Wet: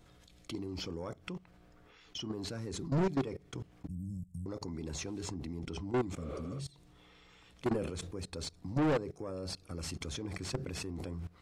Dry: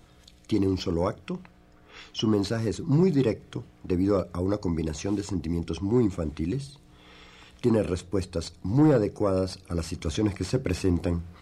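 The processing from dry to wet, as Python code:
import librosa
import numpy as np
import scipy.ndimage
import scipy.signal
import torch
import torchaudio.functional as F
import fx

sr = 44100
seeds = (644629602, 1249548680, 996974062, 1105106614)

y = fx.ellip_bandstop(x, sr, low_hz=180.0, high_hz=8400.0, order=3, stop_db=40, at=(3.87, 4.46))
y = fx.high_shelf(y, sr, hz=3400.0, db=-4.0, at=(5.21, 5.91))
y = fx.spec_repair(y, sr, seeds[0], start_s=6.22, length_s=0.35, low_hz=300.0, high_hz=4500.0, source='before')
y = fx.level_steps(y, sr, step_db=21)
y = 10.0 ** (-29.0 / 20.0) * np.tanh(y / 10.0 ** (-29.0 / 20.0))
y = fx.sustainer(y, sr, db_per_s=58.0, at=(7.72, 8.14))
y = y * librosa.db_to_amplitude(2.5)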